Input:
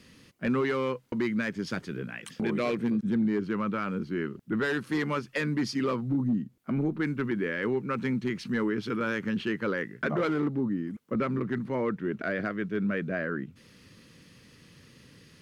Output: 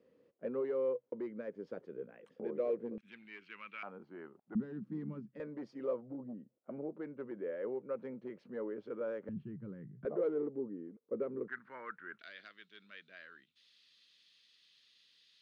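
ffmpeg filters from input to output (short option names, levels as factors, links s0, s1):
-af "asetnsamples=n=441:p=0,asendcmd='2.98 bandpass f 2500;3.83 bandpass f 750;4.55 bandpass f 200;5.4 bandpass f 550;9.29 bandpass f 140;10.05 bandpass f 460;11.48 bandpass f 1500;12.19 bandpass f 3700',bandpass=f=500:t=q:w=4.5:csg=0"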